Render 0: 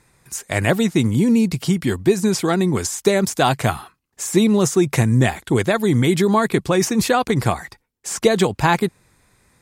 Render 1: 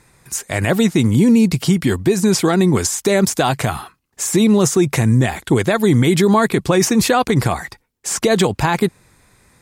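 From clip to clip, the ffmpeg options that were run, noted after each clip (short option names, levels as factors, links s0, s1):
-af "alimiter=limit=0.299:level=0:latency=1:release=62,volume=1.78"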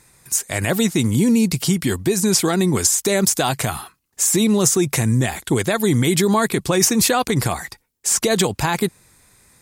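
-af "highshelf=f=4500:g=10.5,volume=0.631"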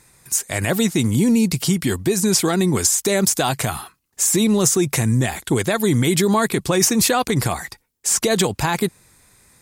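-af "asoftclip=type=tanh:threshold=0.708"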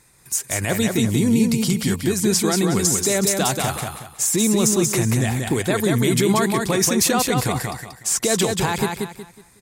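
-af "aecho=1:1:184|368|552|736:0.631|0.196|0.0606|0.0188,volume=0.75"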